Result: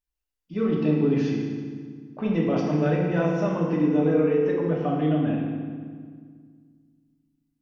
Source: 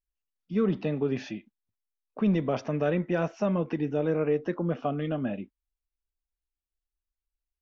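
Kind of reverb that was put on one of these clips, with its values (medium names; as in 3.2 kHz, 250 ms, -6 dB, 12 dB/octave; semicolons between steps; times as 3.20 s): FDN reverb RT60 1.8 s, low-frequency decay 1.45×, high-frequency decay 0.8×, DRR -3 dB; trim -1.5 dB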